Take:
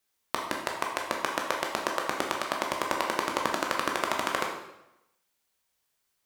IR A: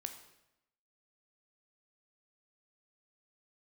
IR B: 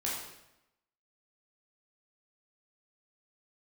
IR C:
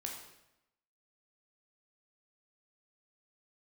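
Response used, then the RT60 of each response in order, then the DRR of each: C; 0.90 s, 0.90 s, 0.90 s; 6.0 dB, -6.0 dB, -0.5 dB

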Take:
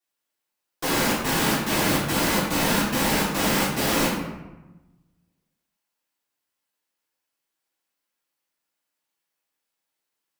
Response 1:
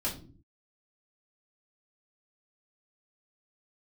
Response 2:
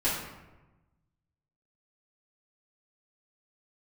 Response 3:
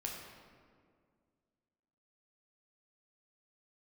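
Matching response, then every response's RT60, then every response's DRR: 2; 0.45 s, 1.1 s, 2.0 s; -7.0 dB, -11.0 dB, -1.5 dB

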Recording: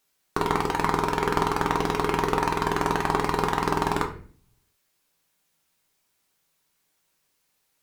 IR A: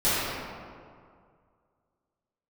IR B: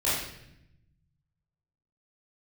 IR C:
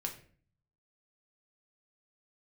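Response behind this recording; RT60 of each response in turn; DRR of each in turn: C; 2.1 s, 0.80 s, 0.45 s; -16.5 dB, -11.0 dB, 1.5 dB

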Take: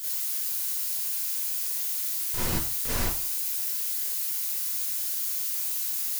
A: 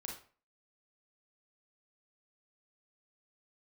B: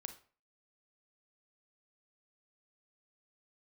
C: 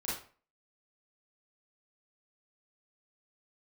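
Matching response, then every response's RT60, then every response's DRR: C; 0.40 s, 0.40 s, 0.40 s; -1.0 dB, 8.0 dB, -8.5 dB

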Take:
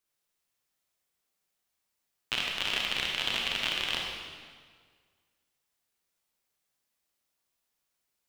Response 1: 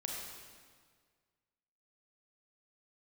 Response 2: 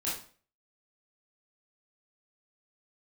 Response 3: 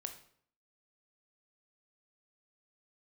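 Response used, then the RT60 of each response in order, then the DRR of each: 1; 1.7 s, 0.45 s, 0.60 s; -1.5 dB, -8.0 dB, 6.0 dB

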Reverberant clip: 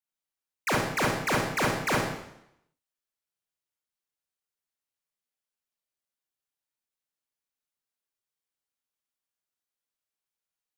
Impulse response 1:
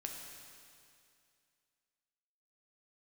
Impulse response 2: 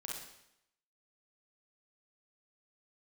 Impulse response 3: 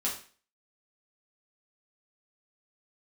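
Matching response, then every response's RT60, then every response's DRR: 2; 2.4 s, 0.80 s, 0.40 s; 1.0 dB, -3.5 dB, -5.5 dB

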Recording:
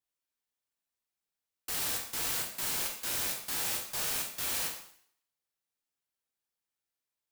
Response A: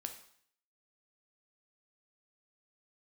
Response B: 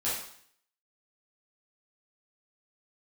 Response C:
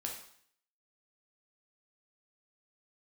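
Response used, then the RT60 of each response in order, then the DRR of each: C; 0.60 s, 0.60 s, 0.60 s; 5.0 dB, -10.0 dB, -0.5 dB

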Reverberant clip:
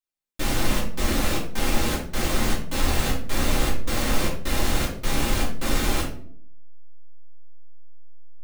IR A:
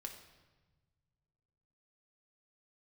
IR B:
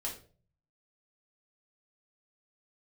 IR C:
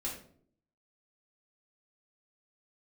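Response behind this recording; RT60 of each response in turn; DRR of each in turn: C; 1.3 s, 0.40 s, 0.60 s; 2.5 dB, -3.5 dB, -6.0 dB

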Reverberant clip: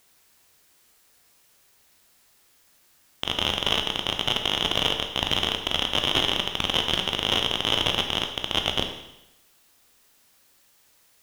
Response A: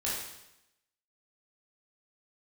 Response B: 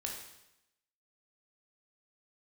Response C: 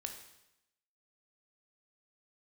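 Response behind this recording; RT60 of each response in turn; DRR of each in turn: C; 0.85 s, 0.85 s, 0.85 s; -7.5 dB, -0.5 dB, 4.0 dB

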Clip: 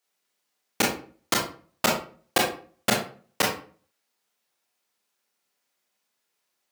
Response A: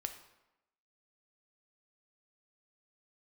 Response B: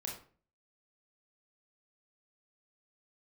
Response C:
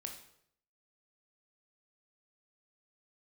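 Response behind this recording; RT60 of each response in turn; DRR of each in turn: B; 0.95 s, 0.40 s, 0.70 s; 6.0 dB, -1.5 dB, 2.5 dB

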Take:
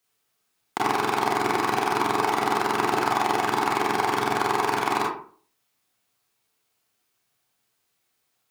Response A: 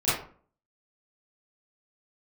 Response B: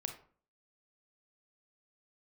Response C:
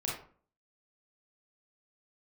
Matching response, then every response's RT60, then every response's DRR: C; 0.45 s, 0.45 s, 0.45 s; -14.0 dB, 5.0 dB, -4.5 dB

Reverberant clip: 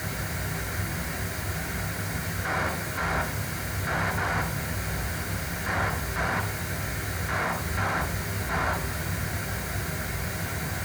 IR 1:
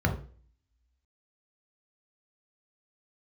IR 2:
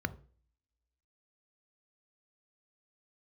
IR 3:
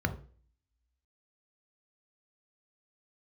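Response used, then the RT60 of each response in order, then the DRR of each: 1; 0.40 s, 0.45 s, 0.40 s; 2.5 dB, 14.0 dB, 7.5 dB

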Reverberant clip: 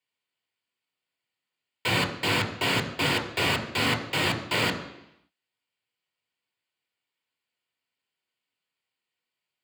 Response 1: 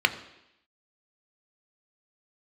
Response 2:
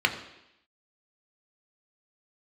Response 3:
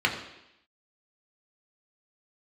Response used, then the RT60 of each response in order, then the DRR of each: 2; 0.85 s, 0.85 s, 0.85 s; 8.0 dB, 4.0 dB, 0.0 dB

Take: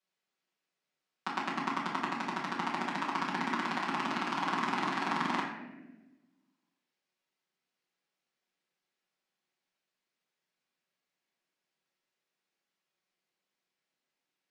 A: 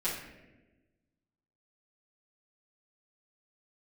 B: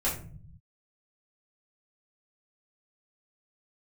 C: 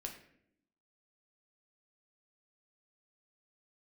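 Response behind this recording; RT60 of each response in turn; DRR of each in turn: A; no single decay rate, 0.45 s, 0.70 s; -10.5 dB, -8.0 dB, 1.5 dB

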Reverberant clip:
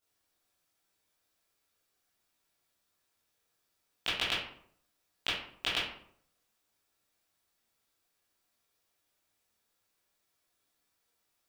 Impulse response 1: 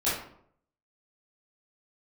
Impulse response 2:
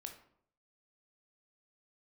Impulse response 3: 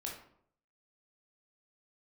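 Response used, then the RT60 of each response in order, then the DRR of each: 1; 0.65 s, 0.65 s, 0.65 s; -11.5 dB, 4.0 dB, -2.0 dB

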